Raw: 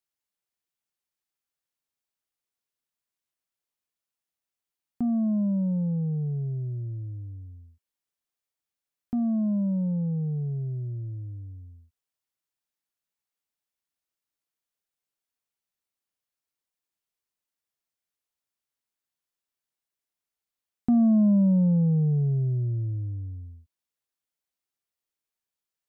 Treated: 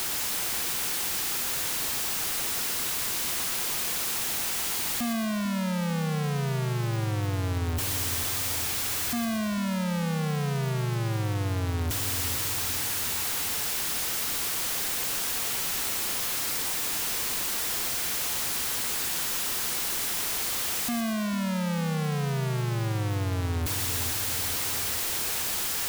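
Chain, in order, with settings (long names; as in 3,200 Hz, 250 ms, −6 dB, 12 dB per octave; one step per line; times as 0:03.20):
sign of each sample alone
notch filter 600 Hz, Q 12
on a send: echo with a time of its own for lows and highs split 550 Hz, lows 446 ms, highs 121 ms, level −8.5 dB
on the sum: level +2 dB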